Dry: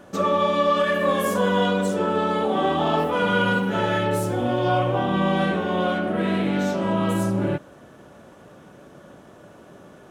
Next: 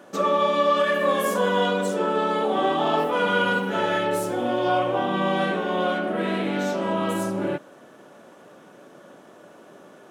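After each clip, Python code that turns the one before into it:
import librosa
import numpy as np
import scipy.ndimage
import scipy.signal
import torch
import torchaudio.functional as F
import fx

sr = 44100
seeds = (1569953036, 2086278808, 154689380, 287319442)

y = scipy.signal.sosfilt(scipy.signal.butter(2, 240.0, 'highpass', fs=sr, output='sos'), x)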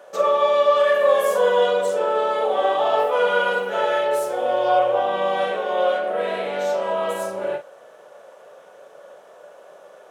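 y = fx.low_shelf_res(x, sr, hz=380.0, db=-10.5, q=3.0)
y = fx.doubler(y, sr, ms=41.0, db=-9.0)
y = y * 10.0 ** (-1.0 / 20.0)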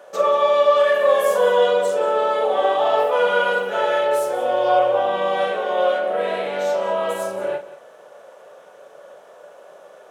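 y = x + 10.0 ** (-16.0 / 20.0) * np.pad(x, (int(183 * sr / 1000.0), 0))[:len(x)]
y = y * 10.0 ** (1.0 / 20.0)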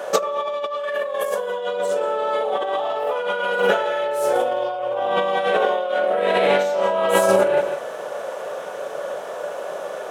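y = fx.over_compress(x, sr, threshold_db=-28.0, ratio=-1.0)
y = y * 10.0 ** (6.5 / 20.0)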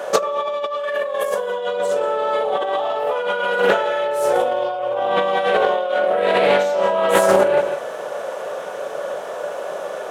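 y = fx.doppler_dist(x, sr, depth_ms=0.17)
y = y * 10.0 ** (2.0 / 20.0)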